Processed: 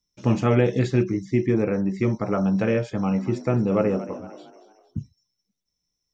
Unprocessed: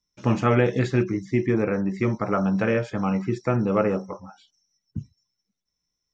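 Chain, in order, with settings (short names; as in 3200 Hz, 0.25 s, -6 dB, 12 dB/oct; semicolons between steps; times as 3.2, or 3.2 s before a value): bell 1400 Hz -6.5 dB 1.5 oct; 2.94–4.99 frequency-shifting echo 0.228 s, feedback 43%, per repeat +56 Hz, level -15 dB; gain +1.5 dB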